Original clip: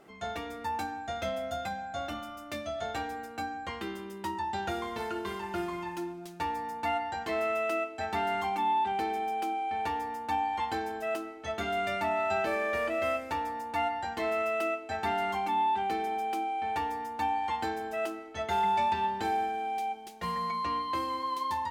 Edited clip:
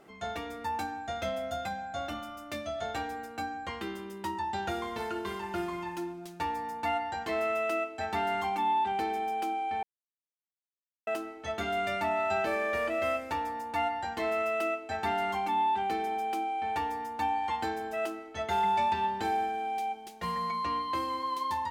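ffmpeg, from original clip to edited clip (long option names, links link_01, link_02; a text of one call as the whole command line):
ffmpeg -i in.wav -filter_complex "[0:a]asplit=3[link_01][link_02][link_03];[link_01]atrim=end=9.83,asetpts=PTS-STARTPTS,afade=type=out:start_time=9.826:duration=0.004:curve=hsin[link_04];[link_02]atrim=start=9.83:end=11.07,asetpts=PTS-STARTPTS,volume=0[link_05];[link_03]atrim=start=11.07,asetpts=PTS-STARTPTS,afade=type=in:duration=0.004:curve=hsin[link_06];[link_04][link_05][link_06]concat=n=3:v=0:a=1" out.wav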